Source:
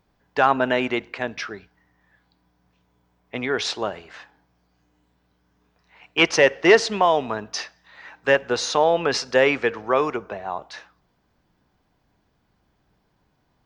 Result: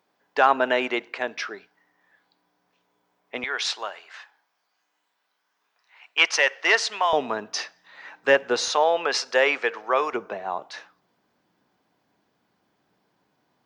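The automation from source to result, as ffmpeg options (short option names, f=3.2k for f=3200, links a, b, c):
-af "asetnsamples=n=441:p=0,asendcmd='3.44 highpass f 940;7.13 highpass f 230;8.68 highpass f 540;10.13 highpass f 210',highpass=350"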